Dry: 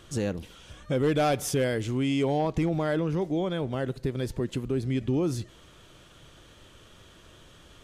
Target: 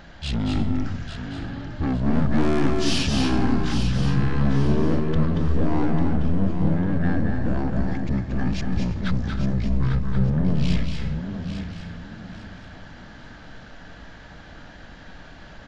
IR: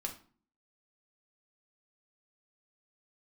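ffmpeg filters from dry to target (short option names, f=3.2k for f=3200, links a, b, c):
-filter_complex "[0:a]aeval=exprs='(tanh(28.2*val(0)+0.35)-tanh(0.35))/28.2':c=same,asplit=5[a][b][c][d][e];[b]adelay=423,afreqshift=41,volume=-9dB[f];[c]adelay=846,afreqshift=82,volume=-19.2dB[g];[d]adelay=1269,afreqshift=123,volume=-29.3dB[h];[e]adelay=1692,afreqshift=164,volume=-39.5dB[i];[a][f][g][h][i]amix=inputs=5:normalize=0,asplit=2[j][k];[1:a]atrim=start_sample=2205,adelay=115[l];[k][l]afir=irnorm=-1:irlink=0,volume=-3dB[m];[j][m]amix=inputs=2:normalize=0,asetrate=22050,aresample=44100,volume=8.5dB"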